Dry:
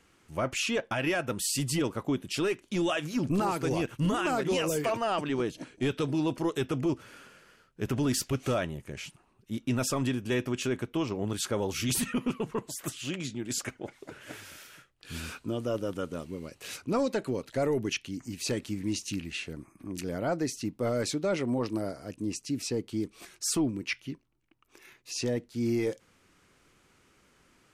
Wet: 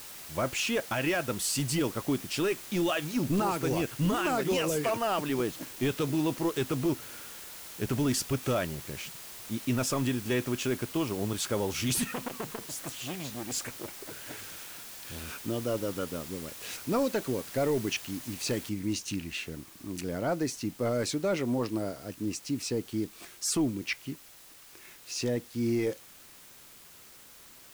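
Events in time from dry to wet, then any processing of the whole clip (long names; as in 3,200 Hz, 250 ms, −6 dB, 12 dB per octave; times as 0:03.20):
0:12.05–0:15.33: saturating transformer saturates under 940 Hz
0:18.69: noise floor change −45 dB −53 dB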